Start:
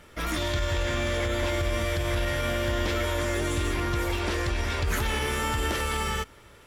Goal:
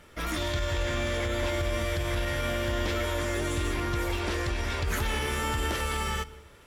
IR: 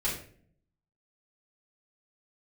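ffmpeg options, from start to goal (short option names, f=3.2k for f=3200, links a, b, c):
-filter_complex "[0:a]asplit=2[a][b];[1:a]atrim=start_sample=2205,adelay=121[c];[b][c]afir=irnorm=-1:irlink=0,volume=-27dB[d];[a][d]amix=inputs=2:normalize=0,volume=-2dB"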